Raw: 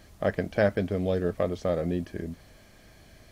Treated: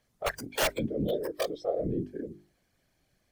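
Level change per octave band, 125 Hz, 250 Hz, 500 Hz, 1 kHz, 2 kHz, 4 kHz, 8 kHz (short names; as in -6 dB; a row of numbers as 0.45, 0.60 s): -7.5 dB, -4.0 dB, -4.5 dB, 0.0 dB, -1.5 dB, +9.0 dB, n/a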